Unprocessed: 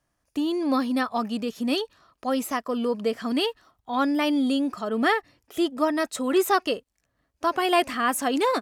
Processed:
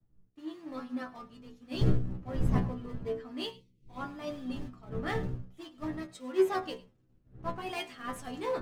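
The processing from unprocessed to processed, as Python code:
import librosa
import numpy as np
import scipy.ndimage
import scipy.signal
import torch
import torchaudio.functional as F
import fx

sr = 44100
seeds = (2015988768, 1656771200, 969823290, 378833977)

p1 = fx.dmg_wind(x, sr, seeds[0], corner_hz=150.0, level_db=-25.0)
p2 = fx.sample_hold(p1, sr, seeds[1], rate_hz=1500.0, jitter_pct=20)
p3 = p1 + F.gain(torch.from_numpy(p2), -10.0).numpy()
p4 = fx.high_shelf(p3, sr, hz=9000.0, db=-11.5)
p5 = p4 + fx.echo_single(p4, sr, ms=107, db=-17.0, dry=0)
p6 = fx.spec_box(p5, sr, start_s=3.51, length_s=0.37, low_hz=550.0, high_hz=1900.0, gain_db=-26)
p7 = fx.peak_eq(p6, sr, hz=65.0, db=-12.0, octaves=0.47)
p8 = fx.hum_notches(p7, sr, base_hz=60, count=4)
p9 = fx.stiff_resonator(p8, sr, f0_hz=61.0, decay_s=0.35, stiffness=0.002)
p10 = fx.band_widen(p9, sr, depth_pct=100)
y = F.gain(torch.from_numpy(p10), -7.0).numpy()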